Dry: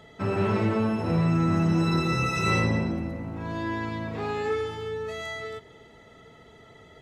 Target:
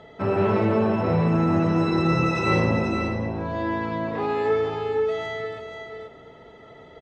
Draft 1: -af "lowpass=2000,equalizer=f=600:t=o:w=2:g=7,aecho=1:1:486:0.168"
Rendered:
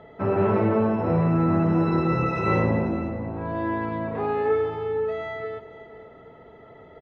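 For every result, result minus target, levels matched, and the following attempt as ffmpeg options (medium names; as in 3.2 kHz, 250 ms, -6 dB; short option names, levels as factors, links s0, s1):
4 kHz band -10.0 dB; echo-to-direct -8.5 dB
-af "lowpass=4800,equalizer=f=600:t=o:w=2:g=7,aecho=1:1:486:0.168"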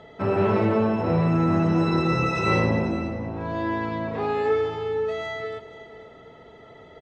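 echo-to-direct -8.5 dB
-af "lowpass=4800,equalizer=f=600:t=o:w=2:g=7,aecho=1:1:486:0.447"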